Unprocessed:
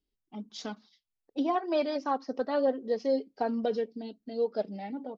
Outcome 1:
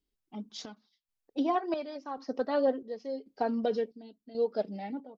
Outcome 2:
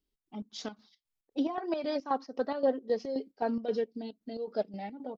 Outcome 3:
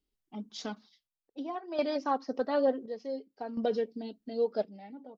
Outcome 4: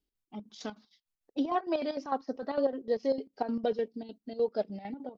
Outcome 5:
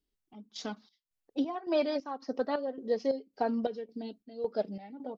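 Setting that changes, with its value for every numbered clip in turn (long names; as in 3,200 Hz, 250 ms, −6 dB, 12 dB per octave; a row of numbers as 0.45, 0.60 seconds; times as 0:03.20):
square-wave tremolo, speed: 0.92, 3.8, 0.56, 6.6, 1.8 Hertz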